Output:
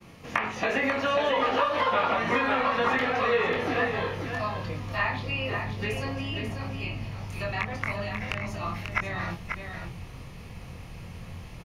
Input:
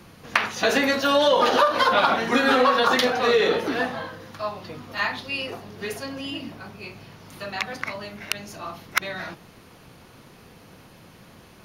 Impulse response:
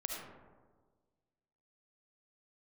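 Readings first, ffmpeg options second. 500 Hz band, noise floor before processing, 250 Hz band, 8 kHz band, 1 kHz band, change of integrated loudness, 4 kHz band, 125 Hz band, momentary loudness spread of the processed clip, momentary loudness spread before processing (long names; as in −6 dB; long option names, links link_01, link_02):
−5.5 dB, −50 dBFS, −4.5 dB, −12.0 dB, −4.5 dB, −5.5 dB, −9.0 dB, +8.5 dB, 18 LU, 19 LU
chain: -filter_complex "[0:a]aemphasis=mode=reproduction:type=75fm,bandreject=frequency=1500:width=11,acrossover=split=3000[link_01][link_02];[link_02]acompressor=threshold=-42dB:ratio=4:attack=1:release=60[link_03];[link_01][link_03]amix=inputs=2:normalize=0,aexciter=amount=2.1:drive=3.6:freq=2100,asubboost=boost=6:cutoff=110,acrossover=split=1300|2600[link_04][link_05][link_06];[link_04]acompressor=threshold=-28dB:ratio=4[link_07];[link_05]acompressor=threshold=-30dB:ratio=4[link_08];[link_06]acompressor=threshold=-47dB:ratio=4[link_09];[link_07][link_08][link_09]amix=inputs=3:normalize=0,agate=range=-33dB:threshold=-44dB:ratio=3:detection=peak,asplit=2[link_10][link_11];[link_11]adelay=23,volume=-5dB[link_12];[link_10][link_12]amix=inputs=2:normalize=0,asplit=2[link_13][link_14];[link_14]aecho=0:1:540:0.501[link_15];[link_13][link_15]amix=inputs=2:normalize=0"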